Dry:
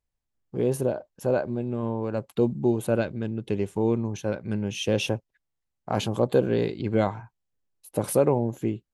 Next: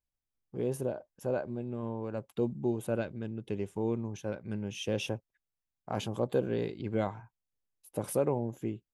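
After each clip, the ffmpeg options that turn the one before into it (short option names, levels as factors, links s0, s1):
-af "bandreject=f=4200:w=12,volume=0.398"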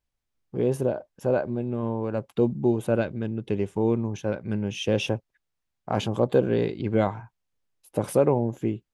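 -af "highshelf=f=8300:g=-11.5,volume=2.66"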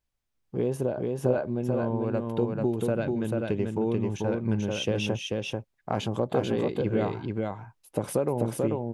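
-af "acompressor=threshold=0.0708:ratio=4,aecho=1:1:439:0.708"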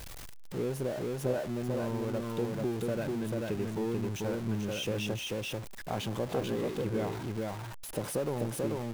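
-af "aeval=exprs='val(0)+0.5*0.0355*sgn(val(0))':c=same,volume=0.398"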